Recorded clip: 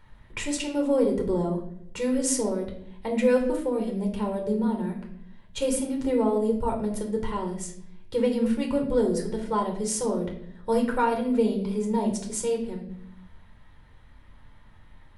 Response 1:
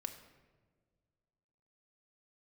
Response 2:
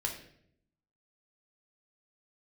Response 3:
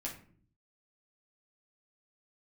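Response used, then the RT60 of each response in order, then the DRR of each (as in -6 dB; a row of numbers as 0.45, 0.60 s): 2; not exponential, 0.70 s, 0.50 s; 4.5, 1.5, -3.5 dB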